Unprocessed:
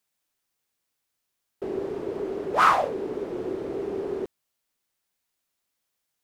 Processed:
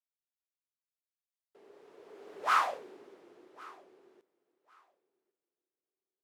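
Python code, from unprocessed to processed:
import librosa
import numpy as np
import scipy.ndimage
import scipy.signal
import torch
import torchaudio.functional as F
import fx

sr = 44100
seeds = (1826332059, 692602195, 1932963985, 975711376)

p1 = fx.doppler_pass(x, sr, speed_mps=15, closest_m=3.0, pass_at_s=2.57)
p2 = fx.highpass(p1, sr, hz=1200.0, slope=6)
p3 = p2 + fx.echo_feedback(p2, sr, ms=1103, feedback_pct=19, wet_db=-23.0, dry=0)
y = F.gain(torch.from_numpy(p3), -5.0).numpy()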